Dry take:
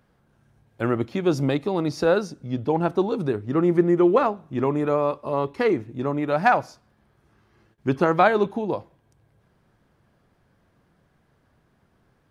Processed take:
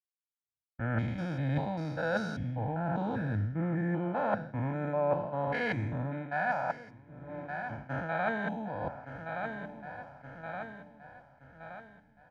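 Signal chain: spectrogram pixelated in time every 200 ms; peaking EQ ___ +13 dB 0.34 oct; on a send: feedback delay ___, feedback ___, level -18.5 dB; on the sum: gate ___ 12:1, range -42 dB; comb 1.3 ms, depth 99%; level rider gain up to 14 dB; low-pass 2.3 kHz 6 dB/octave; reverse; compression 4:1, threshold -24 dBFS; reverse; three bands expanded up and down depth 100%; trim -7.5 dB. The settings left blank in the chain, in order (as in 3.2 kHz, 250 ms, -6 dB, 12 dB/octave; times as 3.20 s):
1.8 kHz, 1171 ms, 59%, -57 dBFS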